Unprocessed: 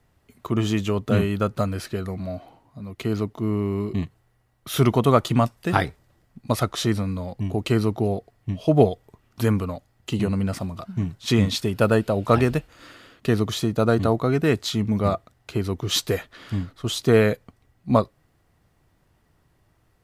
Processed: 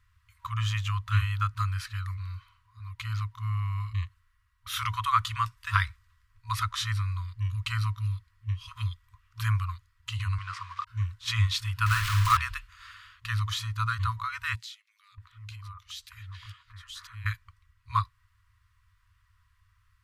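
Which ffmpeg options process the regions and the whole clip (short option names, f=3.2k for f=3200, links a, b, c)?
-filter_complex "[0:a]asettb=1/sr,asplit=3[a][b][c];[a]atrim=end=10.384[d];[b]atrim=start=10.38:end=10.87,asetpts=PTS-STARTPTS,afade=t=in:d=0.004:c=qsin,afade=t=out:st=0.486:d=0.004:c=qsin,equalizer=f=1.1k:w=3.8:g=9.5,aeval=exprs='val(0)*gte(abs(val(0)),0.0119)':c=same,highpass=200,lowpass=5.4k[e];[c]atrim=start=10.866[f];[d][e]acrossfade=d=0.004:c1=hsin:c2=qsin[g];[g][f]acrossfade=d=0.004:c1=qsin:c2=hsin,asettb=1/sr,asplit=3[h][i][j];[h]atrim=end=11.864[k];[i]atrim=start=11.86:end=12.37,asetpts=PTS-STARTPTS,afade=t=in:d=0.004:c=qsin,afade=t=out:st=0.506:d=0.004:c=qsin,aeval=exprs='val(0)+0.5*0.0794*sgn(val(0))':c=same,acrusher=bits=4:mode=log:mix=0:aa=0.000001,asplit=2[l][m];[m]adelay=49,volume=-5.5dB[n];[l][n]amix=inputs=2:normalize=0,atrim=end_sample=22491[o];[j]atrim=start=12.366[p];[k][o]acrossfade=d=0.004:c1=hsin:c2=qsin[q];[q][p]acrossfade=d=0.004:c1=qsin:c2=hsin,asettb=1/sr,asplit=3[r][s][t];[r]atrim=end=14.554[u];[s]atrim=start=14.55:end=17.26,asetpts=PTS-STARTPTS,afade=t=in:d=0.004:c=qsin,afade=t=out:st=2.706:d=0.004:c=qsin,acompressor=threshold=-37dB:ratio=4:attack=3.2:release=140:knee=1:detection=peak,acrossover=split=1800[v][w];[v]adelay=630[x];[x][w]amix=inputs=2:normalize=0,atrim=end_sample=119511[y];[t]atrim=start=17.256[z];[u][y]acrossfade=d=0.004:c1=hsin:c2=qsin[aa];[aa][z]acrossfade=d=0.004:c1=qsin:c2=hsin,afftfilt=real='re*(1-between(b*sr/4096,110,960))':imag='im*(1-between(b*sr/4096,110,960))':win_size=4096:overlap=0.75,highshelf=f=5.3k:g=-8.5"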